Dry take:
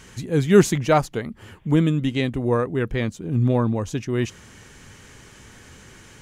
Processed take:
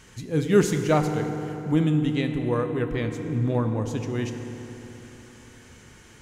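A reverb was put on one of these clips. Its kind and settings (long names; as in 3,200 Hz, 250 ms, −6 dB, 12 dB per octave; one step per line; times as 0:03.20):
feedback delay network reverb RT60 3.7 s, high-frequency decay 0.6×, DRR 5.5 dB
level −5 dB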